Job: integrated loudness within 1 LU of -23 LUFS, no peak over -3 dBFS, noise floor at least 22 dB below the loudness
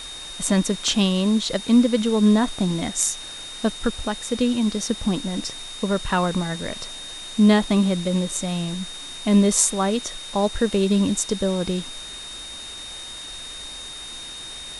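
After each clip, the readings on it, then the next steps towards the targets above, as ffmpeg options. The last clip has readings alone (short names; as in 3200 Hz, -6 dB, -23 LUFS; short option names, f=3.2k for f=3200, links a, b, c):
steady tone 3700 Hz; tone level -35 dBFS; noise floor -36 dBFS; noise floor target -44 dBFS; loudness -22.0 LUFS; peak -3.5 dBFS; loudness target -23.0 LUFS
-> -af "bandreject=f=3.7k:w=30"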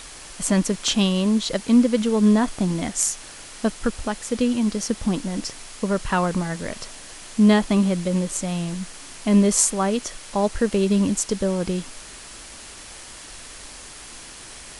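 steady tone none; noise floor -41 dBFS; noise floor target -44 dBFS
-> -af "afftdn=nr=6:nf=-41"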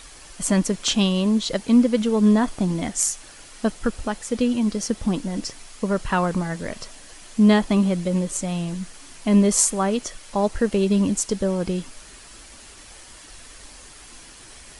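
noise floor -45 dBFS; loudness -22.0 LUFS; peak -3.5 dBFS; loudness target -23.0 LUFS
-> -af "volume=-1dB"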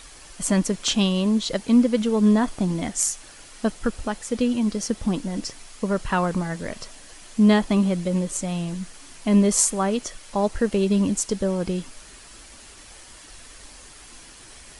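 loudness -23.0 LUFS; peak -4.5 dBFS; noise floor -46 dBFS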